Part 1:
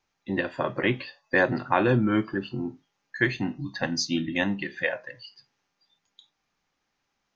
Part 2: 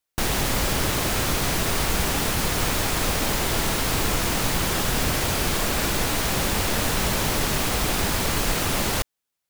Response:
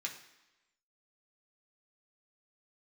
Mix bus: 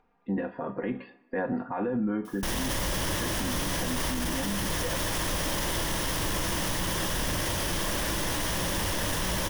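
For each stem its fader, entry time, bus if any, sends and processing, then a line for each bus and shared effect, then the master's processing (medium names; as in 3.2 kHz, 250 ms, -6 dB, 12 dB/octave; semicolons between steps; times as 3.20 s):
-0.5 dB, 0.00 s, send -7 dB, low-pass 1 kHz 12 dB/octave; comb 4.2 ms, depth 67%; peak limiter -20 dBFS, peak gain reduction 11 dB
-2.5 dB, 2.25 s, no send, rippled EQ curve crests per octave 1.2, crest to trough 6 dB; saturation -14 dBFS, distortion -22 dB; level flattener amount 50%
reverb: on, RT60 1.0 s, pre-delay 3 ms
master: upward compressor, threshold -58 dBFS; peak limiter -21.5 dBFS, peak gain reduction 8.5 dB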